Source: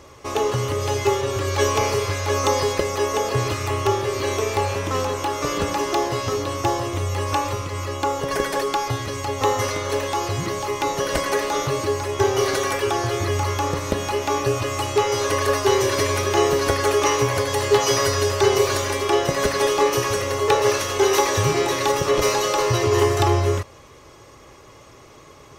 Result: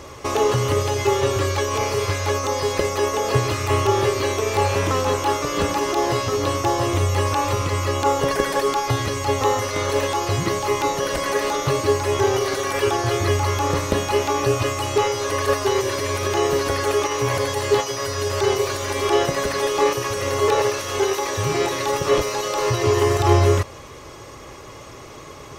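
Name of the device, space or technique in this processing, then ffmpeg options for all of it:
de-esser from a sidechain: -filter_complex "[0:a]asplit=2[s0][s1];[s1]highpass=f=4700:w=0.5412,highpass=f=4700:w=1.3066,apad=whole_len=1128312[s2];[s0][s2]sidechaincompress=threshold=0.01:ratio=6:attack=3.6:release=42,volume=2.24"

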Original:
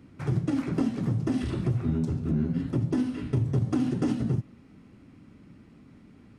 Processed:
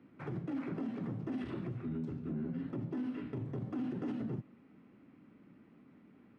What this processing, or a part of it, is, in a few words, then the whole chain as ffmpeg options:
DJ mixer with the lows and highs turned down: -filter_complex "[0:a]asettb=1/sr,asplit=3[s0][s1][s2];[s0]atrim=end=1.674[s3];[s1]atrim=start=1.67:end=2.28,asetpts=PTS-STARTPTS,afade=t=in:d=0.004:c=qsin,afade=t=out:st=0.606:d=0.004:c=qsin,equalizer=f=730:w=0.88:g=-6[s4];[s2]atrim=start=2.276[s5];[s3][s4]acrossfade=d=0.004:c1=hsin:c2=qsin[s6];[s6][s5]acrossfade=d=0.004:c1=qsin:c2=hsin,acrossover=split=160 3100:gain=0.141 1 0.112[s7][s8][s9];[s7][s8][s9]amix=inputs=3:normalize=0,alimiter=level_in=1.19:limit=0.0631:level=0:latency=1:release=28,volume=0.841,volume=0.531"

